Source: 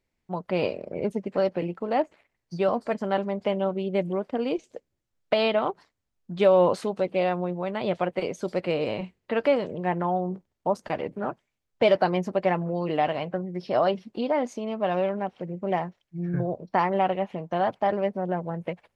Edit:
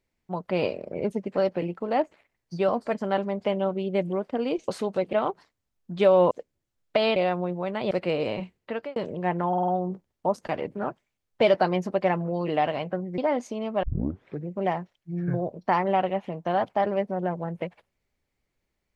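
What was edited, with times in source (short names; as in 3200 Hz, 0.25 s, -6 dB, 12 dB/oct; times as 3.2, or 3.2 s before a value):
4.68–5.53 swap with 6.71–7.16
7.91–8.52 cut
9.17–9.57 fade out
10.09 stutter 0.05 s, 5 plays
13.59–14.24 cut
14.89 tape start 0.64 s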